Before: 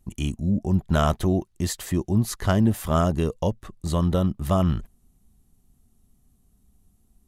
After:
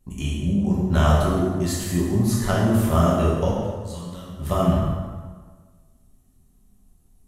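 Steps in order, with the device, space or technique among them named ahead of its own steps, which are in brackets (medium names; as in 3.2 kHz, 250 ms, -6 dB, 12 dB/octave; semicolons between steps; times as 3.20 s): 3.60–4.36 s: amplifier tone stack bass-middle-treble 5-5-5; plate-style reverb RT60 1.5 s, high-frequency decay 0.7×, DRR -5.5 dB; saturated reverb return (on a send at -11 dB: reverberation RT60 1.2 s, pre-delay 21 ms + saturation -19 dBFS, distortion -9 dB); on the sum: trim -3.5 dB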